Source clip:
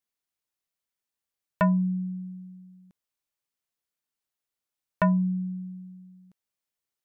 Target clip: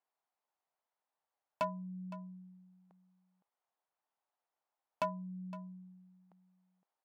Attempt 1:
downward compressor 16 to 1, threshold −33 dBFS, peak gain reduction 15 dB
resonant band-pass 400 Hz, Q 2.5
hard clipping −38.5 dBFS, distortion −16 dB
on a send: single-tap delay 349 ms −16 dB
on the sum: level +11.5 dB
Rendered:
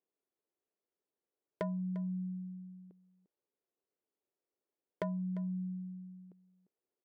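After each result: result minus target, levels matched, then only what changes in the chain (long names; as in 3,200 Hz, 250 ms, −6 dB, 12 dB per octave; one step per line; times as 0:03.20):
1,000 Hz band −12.5 dB; echo 164 ms early
change: resonant band-pass 810 Hz, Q 2.5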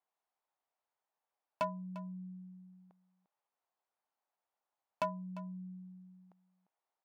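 echo 164 ms early
change: single-tap delay 513 ms −16 dB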